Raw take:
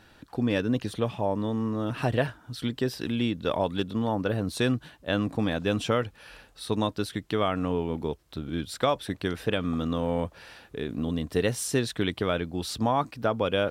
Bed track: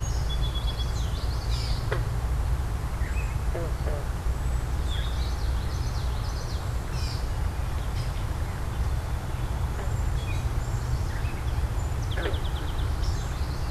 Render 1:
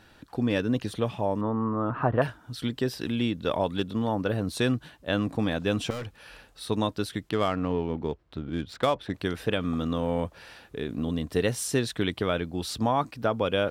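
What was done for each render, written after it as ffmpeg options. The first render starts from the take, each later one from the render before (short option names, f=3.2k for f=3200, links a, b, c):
-filter_complex "[0:a]asettb=1/sr,asplit=3[a][b][c];[a]atrim=end=1.414[d];[b]atrim=start=1.41:end=2.22,asetpts=PTS-STARTPTS,afade=t=in:d=0.004:c=qsin,afade=t=out:st=0.806:d=0.004:c=qsin,lowpass=f=1.2k:t=q:w=2.7[e];[c]atrim=start=2.216[f];[d][e]acrossfade=d=0.004:c1=hsin:c2=qsin[g];[g][f]acrossfade=d=0.004:c1=qsin:c2=hsin,asettb=1/sr,asplit=3[h][i][j];[h]atrim=end=5.904[k];[i]atrim=start=5.9:end=6.69,asetpts=PTS-STARTPTS,afade=t=in:d=0.004:c=qsin,afade=t=out:st=0.786:d=0.004:c=qsin,volume=32.5dB,asoftclip=hard,volume=-32.5dB[l];[j]atrim=start=6.686[m];[k][l]acrossfade=d=0.004:c1=hsin:c2=qsin[n];[n][m]acrossfade=d=0.004:c1=qsin:c2=hsin,asettb=1/sr,asplit=3[o][p][q];[o]atrim=end=7.294[r];[p]atrim=start=7.29:end=9.14,asetpts=PTS-STARTPTS,afade=t=in:d=0.004:c=qsin,afade=t=out:st=1.846:d=0.004:c=qsin,adynamicsmooth=sensitivity=6:basefreq=2.6k[s];[q]atrim=start=9.136[t];[r][s]acrossfade=d=0.004:c1=hsin:c2=qsin[u];[u][t]acrossfade=d=0.004:c1=qsin:c2=hsin"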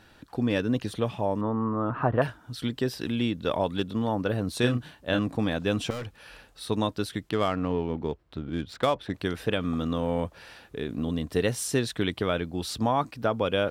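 -filter_complex "[0:a]asettb=1/sr,asplit=3[a][b][c];[a]atrim=end=4.594[d];[b]atrim=start=4.59:end=5.19,asetpts=PTS-STARTPTS,afade=t=in:d=0.004:c=qsin,afade=t=out:st=0.596:d=0.004:c=qsin,asplit=2[e][f];[f]adelay=33,volume=-6dB[g];[e][g]amix=inputs=2:normalize=0,atrim=end_sample=26460[h];[c]atrim=start=5.186[i];[d][h]acrossfade=d=0.004:c1=hsin:c2=qsin[j];[j][i]acrossfade=d=0.004:c1=qsin:c2=hsin"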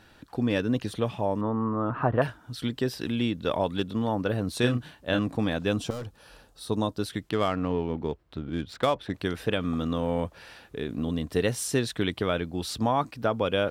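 -filter_complex "[0:a]asettb=1/sr,asplit=3[a][b][c];[a]atrim=end=5.734[d];[b]atrim=start=5.73:end=7.02,asetpts=PTS-STARTPTS,afade=t=in:d=0.004:c=qsin,afade=t=out:st=1.286:d=0.004:c=qsin,equalizer=f=2.2k:t=o:w=1.1:g=-9.5[e];[c]atrim=start=7.016[f];[d][e]acrossfade=d=0.004:c1=hsin:c2=qsin[g];[g][f]acrossfade=d=0.004:c1=qsin:c2=hsin"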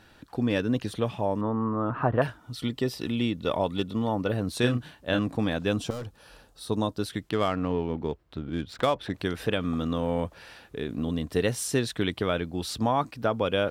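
-filter_complex "[0:a]asettb=1/sr,asplit=3[a][b][c];[a]atrim=end=2.404[d];[b]atrim=start=2.4:end=4.32,asetpts=PTS-STARTPTS,afade=t=in:d=0.004:c=qsin,afade=t=out:st=1.916:d=0.004:c=qsin,asuperstop=centerf=1600:order=12:qfactor=7.2[e];[c]atrim=start=4.316[f];[d][e]acrossfade=d=0.004:c1=hsin:c2=qsin[g];[g][f]acrossfade=d=0.004:c1=qsin:c2=hsin,asettb=1/sr,asplit=3[h][i][j];[h]atrim=end=8.794[k];[i]atrim=start=8.79:end=10.34,asetpts=PTS-STARTPTS,afade=t=in:d=0.004:c=qsin,afade=t=out:st=1.546:d=0.004:c=qsin,acompressor=mode=upward:threshold=-32dB:ratio=2.5:attack=3.2:release=140:knee=2.83:detection=peak[l];[j]atrim=start=10.336[m];[k][l]acrossfade=d=0.004:c1=hsin:c2=qsin[n];[n][m]acrossfade=d=0.004:c1=qsin:c2=hsin"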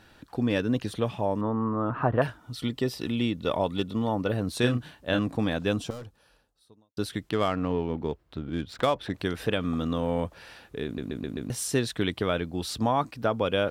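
-filter_complex "[0:a]asplit=7[a][b][c][d][e][f][g];[a]atrim=end=6.97,asetpts=PTS-STARTPTS,afade=t=out:st=5.71:d=1.26:c=qua[h];[b]atrim=start=6.97:end=10.982,asetpts=PTS-STARTPTS,afade=t=in:d=0.004:c=hsin[i];[c]atrim=start=10.848:end=10.982[j];[d]atrim=start=10.848:end=10.982[k];[e]atrim=start=10.848:end=10.982[l];[f]atrim=start=10.848:end=10.982[m];[g]atrim=start=11.498[n];[h][i]concat=n=2:v=0:a=1[o];[o][j]acrossfade=d=0.004:c1=hsin:c2=hsin[p];[p][k]acrossfade=d=0.004:c1=hsin:c2=hsin[q];[q][l]acrossfade=d=0.004:c1=hsin:c2=hsin[r];[r][m]acrossfade=d=0.004:c1=hsin:c2=hsin[s];[s][n]acrossfade=d=0.004:c1=hsin:c2=hsin"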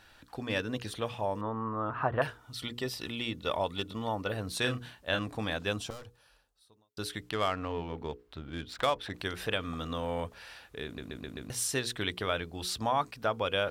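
-af "equalizer=f=220:t=o:w=2.7:g=-10,bandreject=f=60:t=h:w=6,bandreject=f=120:t=h:w=6,bandreject=f=180:t=h:w=6,bandreject=f=240:t=h:w=6,bandreject=f=300:t=h:w=6,bandreject=f=360:t=h:w=6,bandreject=f=420:t=h:w=6,bandreject=f=480:t=h:w=6"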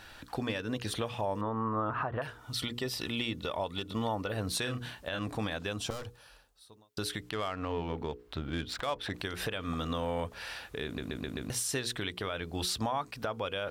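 -filter_complex "[0:a]asplit=2[a][b];[b]acompressor=threshold=-40dB:ratio=6,volume=2.5dB[c];[a][c]amix=inputs=2:normalize=0,alimiter=limit=-22.5dB:level=0:latency=1:release=171"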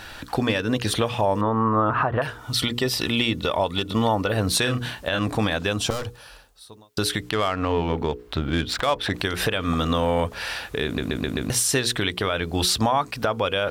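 -af "volume=11.5dB"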